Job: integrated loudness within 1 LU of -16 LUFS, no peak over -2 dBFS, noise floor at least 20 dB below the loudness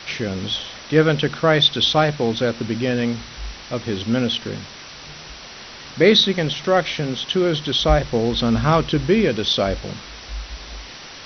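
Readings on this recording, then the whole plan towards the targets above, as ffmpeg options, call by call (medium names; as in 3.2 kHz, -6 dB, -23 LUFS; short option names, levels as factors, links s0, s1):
noise floor -38 dBFS; noise floor target -39 dBFS; loudness -19.0 LUFS; peak level -2.5 dBFS; loudness target -16.0 LUFS
-> -af "afftdn=nr=6:nf=-38"
-af "volume=1.41,alimiter=limit=0.794:level=0:latency=1"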